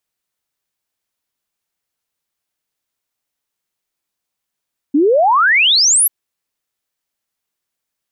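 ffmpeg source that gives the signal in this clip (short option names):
-f lavfi -i "aevalsrc='0.376*clip(min(t,1.14-t)/0.01,0,1)*sin(2*PI*270*1.14/log(12000/270)*(exp(log(12000/270)*t/1.14)-1))':d=1.14:s=44100"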